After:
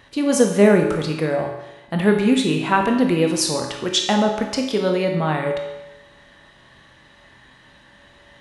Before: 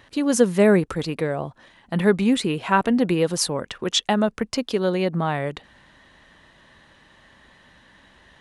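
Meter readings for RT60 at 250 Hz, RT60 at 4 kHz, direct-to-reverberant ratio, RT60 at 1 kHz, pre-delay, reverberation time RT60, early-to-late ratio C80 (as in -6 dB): 1.0 s, 0.95 s, 2.0 dB, 1.0 s, 19 ms, 1.0 s, 7.0 dB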